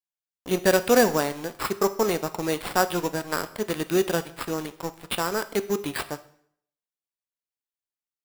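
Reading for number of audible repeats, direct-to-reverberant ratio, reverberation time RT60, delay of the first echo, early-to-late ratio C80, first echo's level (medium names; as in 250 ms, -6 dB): no echo, 11.0 dB, 0.60 s, no echo, 19.0 dB, no echo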